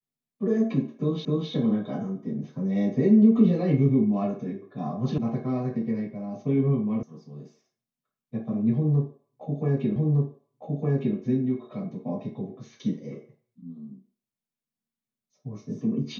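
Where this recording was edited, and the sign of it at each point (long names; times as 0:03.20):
0:01.25: the same again, the last 0.26 s
0:05.18: cut off before it has died away
0:07.03: cut off before it has died away
0:09.96: the same again, the last 1.21 s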